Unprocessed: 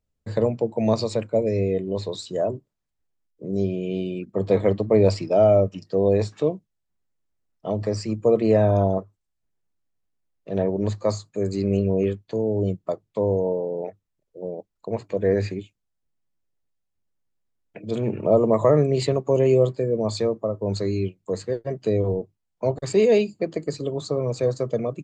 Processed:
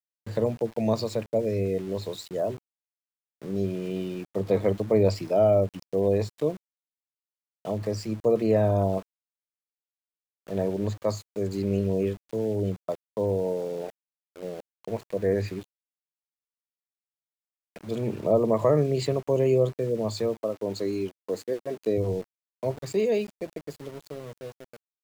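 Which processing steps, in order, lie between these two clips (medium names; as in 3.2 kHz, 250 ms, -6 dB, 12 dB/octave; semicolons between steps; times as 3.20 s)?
fade out at the end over 2.80 s; small samples zeroed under -38.5 dBFS; 20.37–21.98 s: resonant low shelf 190 Hz -8.5 dB, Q 1.5; trim -4 dB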